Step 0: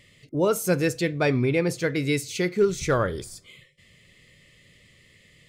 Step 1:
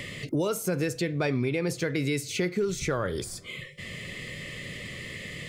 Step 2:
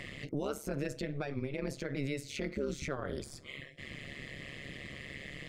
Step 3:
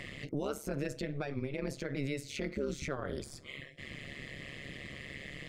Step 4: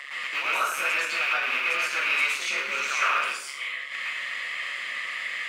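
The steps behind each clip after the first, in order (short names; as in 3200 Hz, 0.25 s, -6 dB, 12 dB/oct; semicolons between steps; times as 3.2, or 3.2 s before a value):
in parallel at +2.5 dB: compressor, threshold -31 dBFS, peak gain reduction 14.5 dB; on the sum: limiter -13.5 dBFS, peak gain reduction 5.5 dB; three-band squash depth 70%; gain -5 dB
high shelf 6300 Hz -10.5 dB; limiter -22 dBFS, peak gain reduction 6.5 dB; AM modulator 140 Hz, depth 90%; gain -2 dB
nothing audible
rattling part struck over -41 dBFS, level -28 dBFS; resonant high-pass 1200 Hz, resonance Q 2.6; reverb RT60 0.65 s, pre-delay 0.105 s, DRR -9 dB; gain +4 dB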